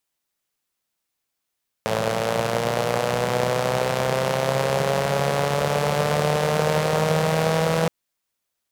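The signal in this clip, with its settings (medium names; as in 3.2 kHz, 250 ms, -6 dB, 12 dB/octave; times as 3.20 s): four-cylinder engine model, changing speed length 6.02 s, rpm 3300, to 4900, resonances 170/510 Hz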